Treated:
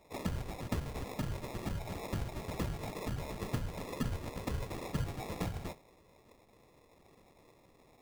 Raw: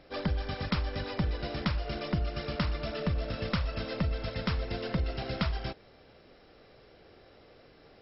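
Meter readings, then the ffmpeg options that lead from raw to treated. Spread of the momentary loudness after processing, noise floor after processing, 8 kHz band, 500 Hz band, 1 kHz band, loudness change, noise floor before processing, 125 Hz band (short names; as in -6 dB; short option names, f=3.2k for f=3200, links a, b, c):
3 LU, -64 dBFS, n/a, -6.0 dB, -4.5 dB, -6.5 dB, -58 dBFS, -5.5 dB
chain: -af "afftfilt=real='hypot(re,im)*cos(2*PI*random(0))':imag='hypot(re,im)*sin(2*PI*random(1))':win_size=512:overlap=0.75,flanger=delay=8.2:depth=3.5:regen=-77:speed=0.63:shape=triangular,acrusher=samples=29:mix=1:aa=0.000001,volume=4.5dB"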